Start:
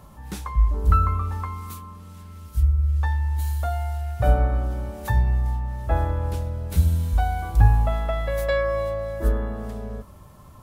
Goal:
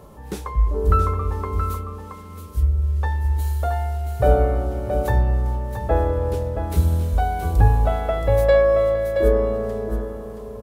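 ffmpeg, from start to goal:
ffmpeg -i in.wav -filter_complex "[0:a]equalizer=frequency=440:width_type=o:width=0.9:gain=13.5,asplit=2[link_01][link_02];[link_02]aecho=0:1:674:0.422[link_03];[link_01][link_03]amix=inputs=2:normalize=0" out.wav

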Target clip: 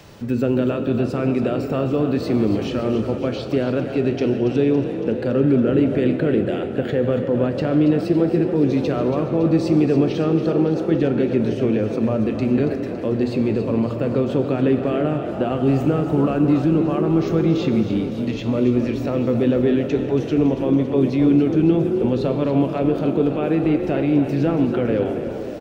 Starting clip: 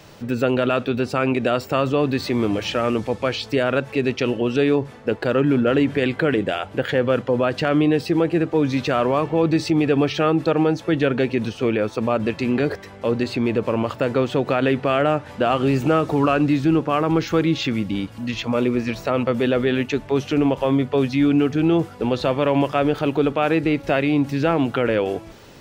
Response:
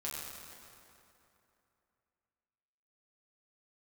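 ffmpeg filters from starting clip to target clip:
-filter_complex "[0:a]acrossover=split=470[link_01][link_02];[link_02]acompressor=threshold=-56dB:ratio=1.5[link_03];[link_01][link_03]amix=inputs=2:normalize=0,asplit=9[link_04][link_05][link_06][link_07][link_08][link_09][link_10][link_11][link_12];[link_05]adelay=280,afreqshift=40,volume=-10.5dB[link_13];[link_06]adelay=560,afreqshift=80,volume=-14.4dB[link_14];[link_07]adelay=840,afreqshift=120,volume=-18.3dB[link_15];[link_08]adelay=1120,afreqshift=160,volume=-22.1dB[link_16];[link_09]adelay=1400,afreqshift=200,volume=-26dB[link_17];[link_10]adelay=1680,afreqshift=240,volume=-29.9dB[link_18];[link_11]adelay=1960,afreqshift=280,volume=-33.8dB[link_19];[link_12]adelay=2240,afreqshift=320,volume=-37.6dB[link_20];[link_04][link_13][link_14][link_15][link_16][link_17][link_18][link_19][link_20]amix=inputs=9:normalize=0,asplit=2[link_21][link_22];[1:a]atrim=start_sample=2205[link_23];[link_22][link_23]afir=irnorm=-1:irlink=0,volume=-5.5dB[link_24];[link_21][link_24]amix=inputs=2:normalize=0"

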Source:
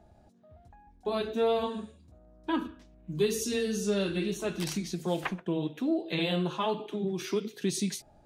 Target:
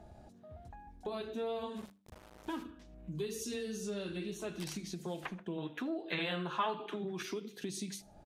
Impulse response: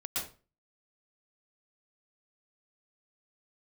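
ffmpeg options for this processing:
-filter_complex "[0:a]acompressor=threshold=-48dB:ratio=2.5,asplit=3[link_01][link_02][link_03];[link_01]afade=type=out:start_time=1.75:duration=0.02[link_04];[link_02]aeval=exprs='val(0)*gte(abs(val(0)),0.00251)':channel_layout=same,afade=type=in:start_time=1.75:duration=0.02,afade=type=out:start_time=2.62:duration=0.02[link_05];[link_03]afade=type=in:start_time=2.62:duration=0.02[link_06];[link_04][link_05][link_06]amix=inputs=3:normalize=0,asettb=1/sr,asplit=3[link_07][link_08][link_09];[link_07]atrim=end=5.584[link_10];[link_08]atrim=start=5.58:end=7.23,asetpts=PTS-STARTPTS,afade=type=in:duration=0.004:curve=qsin,afade=type=out:start_time=1.646:duration=0.004:curve=qsin,equalizer=frequency=1500:width_type=o:width=1.5:gain=13.5[link_11];[link_09]atrim=start=7.226[link_12];[link_10][link_11]acrossfade=duration=0.004:curve1=hsin:curve2=qsin[link_13];[link_13][link_12]acrossfade=duration=0.004:curve1=qsin:curve2=hsin,aecho=1:1:79|158:0.0631|0.0189,aresample=32000,aresample=44100,bandreject=frequency=98.43:width_type=h:width=4,bandreject=frequency=196.86:width_type=h:width=4,bandreject=frequency=295.29:width_type=h:width=4,volume=4dB"

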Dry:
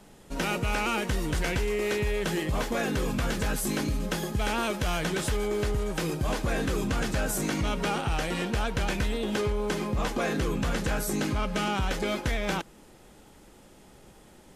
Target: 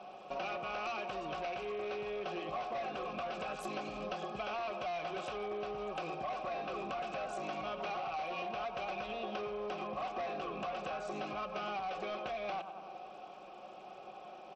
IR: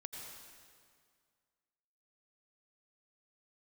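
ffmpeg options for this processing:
-filter_complex "[0:a]asplit=3[link_01][link_02][link_03];[link_01]bandpass=frequency=730:width_type=q:width=8,volume=0dB[link_04];[link_02]bandpass=frequency=1090:width_type=q:width=8,volume=-6dB[link_05];[link_03]bandpass=frequency=2440:width_type=q:width=8,volume=-9dB[link_06];[link_04][link_05][link_06]amix=inputs=3:normalize=0,aecho=1:1:5.4:0.53,asplit=2[link_07][link_08];[link_08]adelay=96,lowpass=frequency=2000:poles=1,volume=-15dB,asplit=2[link_09][link_10];[link_10]adelay=96,lowpass=frequency=2000:poles=1,volume=0.52,asplit=2[link_11][link_12];[link_12]adelay=96,lowpass=frequency=2000:poles=1,volume=0.52,asplit=2[link_13][link_14];[link_14]adelay=96,lowpass=frequency=2000:poles=1,volume=0.52,asplit=2[link_15][link_16];[link_16]adelay=96,lowpass=frequency=2000:poles=1,volume=0.52[link_17];[link_07][link_09][link_11][link_13][link_15][link_17]amix=inputs=6:normalize=0,asplit=2[link_18][link_19];[link_19]acrusher=bits=3:mode=log:mix=0:aa=0.000001,volume=-10dB[link_20];[link_18][link_20]amix=inputs=2:normalize=0,bandreject=frequency=60:width_type=h:width=6,bandreject=frequency=120:width_type=h:width=6,bandreject=frequency=180:width_type=h:width=6,bandreject=frequency=240:width_type=h:width=6,asplit=2[link_21][link_22];[1:a]atrim=start_sample=2205,afade=type=out:start_time=0.19:duration=0.01,atrim=end_sample=8820[link_23];[link_22][link_23]afir=irnorm=-1:irlink=0,volume=-11dB[link_24];[link_21][link_24]amix=inputs=2:normalize=0,asoftclip=type=tanh:threshold=-33.5dB,acompressor=threshold=-50dB:ratio=6,volume=12dB" -ar 32000 -c:a sbc -b:a 64k

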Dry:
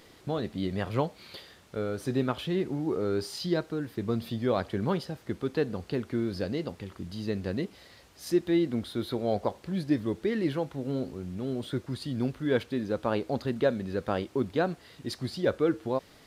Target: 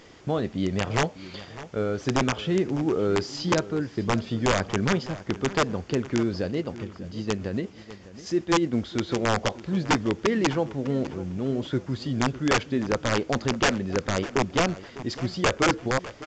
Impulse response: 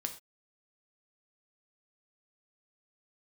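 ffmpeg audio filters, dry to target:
-filter_complex "[0:a]asplit=3[link_01][link_02][link_03];[link_01]afade=type=out:start_time=6.41:duration=0.02[link_04];[link_02]tremolo=f=8.2:d=0.48,afade=type=in:start_time=6.41:duration=0.02,afade=type=out:start_time=8.71:duration=0.02[link_05];[link_03]afade=type=in:start_time=8.71:duration=0.02[link_06];[link_04][link_05][link_06]amix=inputs=3:normalize=0,aeval=exprs='(mod(9.44*val(0)+1,2)-1)/9.44':channel_layout=same,equalizer=frequency=4000:width=5.1:gain=-7.5,asplit=2[link_07][link_08];[link_08]adelay=602,lowpass=frequency=4800:poles=1,volume=-16dB,asplit=2[link_09][link_10];[link_10]adelay=602,lowpass=frequency=4800:poles=1,volume=0.31,asplit=2[link_11][link_12];[link_12]adelay=602,lowpass=frequency=4800:poles=1,volume=0.31[link_13];[link_07][link_09][link_11][link_13]amix=inputs=4:normalize=0,volume=5dB" -ar 16000 -c:a pcm_mulaw

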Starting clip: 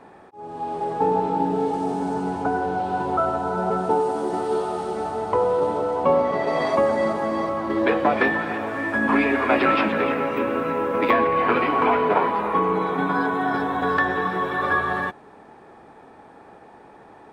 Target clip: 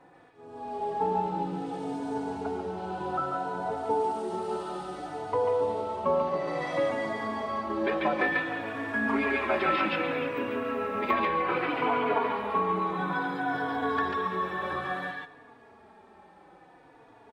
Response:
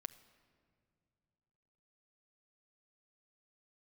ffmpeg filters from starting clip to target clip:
-filter_complex "[0:a]asplit=2[link_01][link_02];[link_02]equalizer=frequency=3300:width_type=o:width=2.2:gain=12.5[link_03];[1:a]atrim=start_sample=2205,adelay=142[link_04];[link_03][link_04]afir=irnorm=-1:irlink=0,volume=-5.5dB[link_05];[link_01][link_05]amix=inputs=2:normalize=0,asplit=2[link_06][link_07];[link_07]adelay=3.5,afreqshift=-0.6[link_08];[link_06][link_08]amix=inputs=2:normalize=1,volume=-5.5dB"

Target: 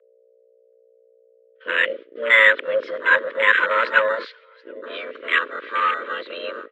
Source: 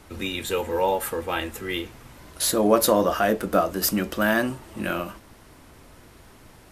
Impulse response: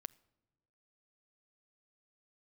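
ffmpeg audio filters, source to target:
-filter_complex "[0:a]areverse,agate=range=-47dB:threshold=-39dB:ratio=16:detection=peak,acontrast=65,aeval=exprs='val(0)+0.0251*(sin(2*PI*60*n/s)+sin(2*PI*2*60*n/s)/2+sin(2*PI*3*60*n/s)/3+sin(2*PI*4*60*n/s)/4+sin(2*PI*5*60*n/s)/5)':channel_layout=same,highpass=frequency=150:width_type=q:width=0.5412,highpass=frequency=150:width_type=q:width=1.307,lowpass=frequency=3400:width_type=q:width=0.5176,lowpass=frequency=3400:width_type=q:width=0.7071,lowpass=frequency=3400:width_type=q:width=1.932,afreqshift=330,aecho=1:1:729|1458|2187:0.133|0.044|0.0145,asplit=2[link_01][link_02];[1:a]atrim=start_sample=2205,lowshelf=frequency=290:gain=10.5,highshelf=frequency=6700:gain=-8[link_03];[link_02][link_03]afir=irnorm=-1:irlink=0,volume=22dB[link_04];[link_01][link_04]amix=inputs=2:normalize=0,afwtdn=0.794,asuperstop=centerf=780:order=4:qfactor=0.68,volume=-10dB"

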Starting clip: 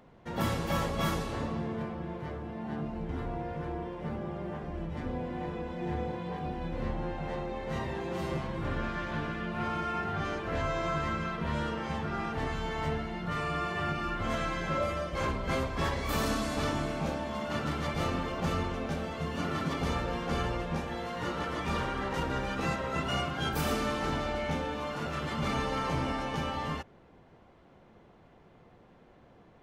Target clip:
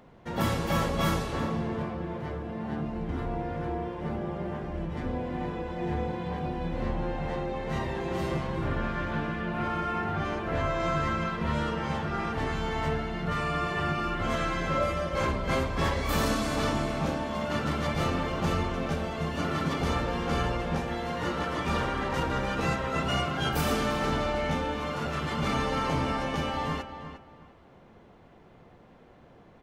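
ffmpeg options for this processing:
ffmpeg -i in.wav -filter_complex "[0:a]asettb=1/sr,asplit=3[link_01][link_02][link_03];[link_01]atrim=end=8.644[link_04];[link_02]atrim=start=8.64:end=10.8,asetpts=PTS-STARTPTS,afade=type=in:duration=0.004:curve=qsin,afade=type=out:start_time=2.156:duration=0.004:curve=qsin,equalizer=frequency=5900:width_type=o:width=1.9:gain=-4.5[link_05];[link_03]atrim=start=10.796[link_06];[link_04][link_05]acrossfade=duration=0.004:curve1=hsin:curve2=qsin[link_07];[link_07][link_06]acrossfade=duration=0.004:curve1=qsin:curve2=hsin,asplit=2[link_08][link_09];[link_09]adelay=353,lowpass=frequency=3100:poles=1,volume=-10dB,asplit=2[link_10][link_11];[link_11]adelay=353,lowpass=frequency=3100:poles=1,volume=0.24,asplit=2[link_12][link_13];[link_13]adelay=353,lowpass=frequency=3100:poles=1,volume=0.24[link_14];[link_08][link_10][link_12][link_14]amix=inputs=4:normalize=0,volume=3dB" out.wav

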